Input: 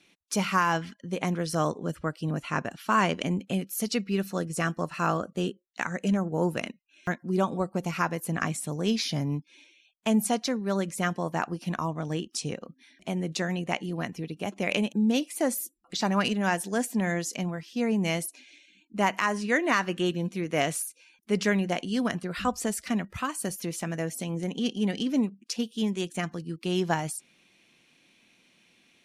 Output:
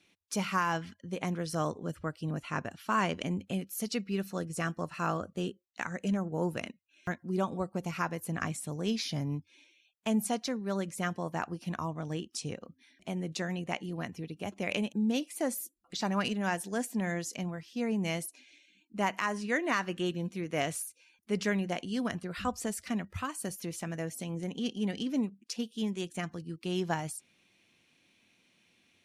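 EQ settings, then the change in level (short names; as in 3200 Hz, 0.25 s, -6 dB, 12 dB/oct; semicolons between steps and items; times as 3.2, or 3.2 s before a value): bell 91 Hz +11 dB 0.43 oct; -5.5 dB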